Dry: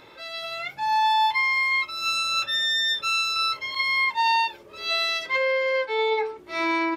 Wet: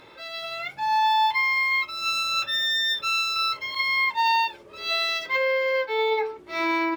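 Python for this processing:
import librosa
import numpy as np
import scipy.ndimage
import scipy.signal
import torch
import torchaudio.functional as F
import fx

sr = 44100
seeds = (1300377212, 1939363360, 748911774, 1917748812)

y = np.interp(np.arange(len(x)), np.arange(len(x))[::2], x[::2])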